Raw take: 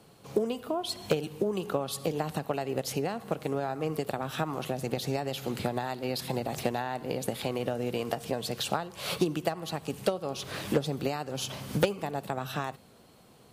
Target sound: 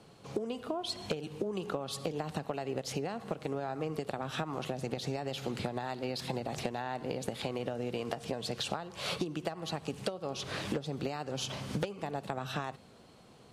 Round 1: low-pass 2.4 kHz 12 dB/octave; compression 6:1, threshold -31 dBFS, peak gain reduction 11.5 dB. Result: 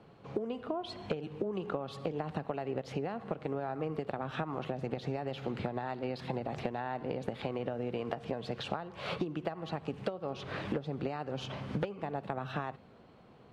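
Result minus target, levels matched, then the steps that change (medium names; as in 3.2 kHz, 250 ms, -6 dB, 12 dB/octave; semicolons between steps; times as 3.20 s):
8 kHz band -16.0 dB
change: low-pass 7.7 kHz 12 dB/octave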